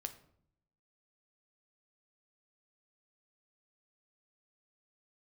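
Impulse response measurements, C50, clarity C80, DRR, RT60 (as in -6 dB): 13.5 dB, 16.5 dB, 7.5 dB, 0.65 s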